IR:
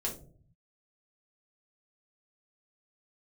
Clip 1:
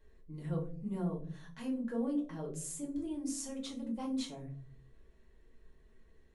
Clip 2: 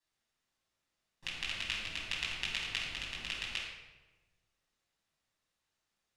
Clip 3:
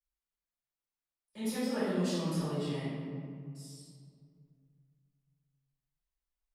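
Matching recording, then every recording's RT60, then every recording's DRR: 1; 0.50, 1.2, 2.2 s; -3.0, -6.0, -15.5 dB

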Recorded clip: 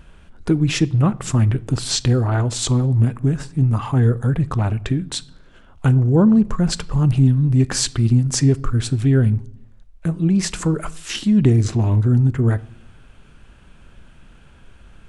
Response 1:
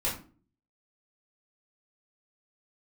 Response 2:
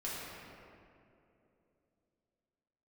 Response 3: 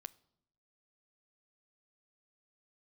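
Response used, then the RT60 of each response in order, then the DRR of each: 3; 0.40, 2.8, 0.75 s; -8.5, -8.5, 17.5 dB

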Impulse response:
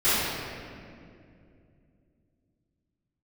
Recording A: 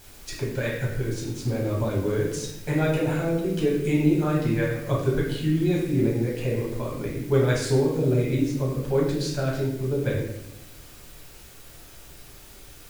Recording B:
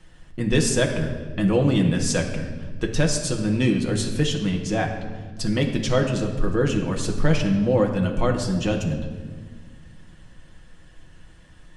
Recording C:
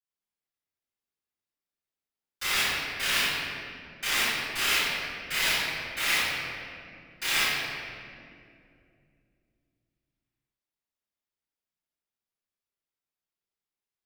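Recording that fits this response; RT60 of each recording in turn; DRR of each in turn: C; 0.85, 1.6, 2.4 s; -4.5, 1.0, -18.5 dB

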